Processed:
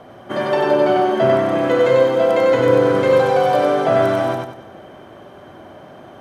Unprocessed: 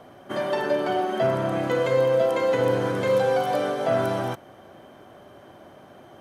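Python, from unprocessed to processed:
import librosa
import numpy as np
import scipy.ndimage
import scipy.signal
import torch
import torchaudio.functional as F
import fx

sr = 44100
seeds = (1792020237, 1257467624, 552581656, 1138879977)

y = fx.high_shelf(x, sr, hz=6300.0, db=-8.5)
y = fx.echo_feedback(y, sr, ms=95, feedback_pct=36, wet_db=-3.0)
y = F.gain(torch.from_numpy(y), 6.0).numpy()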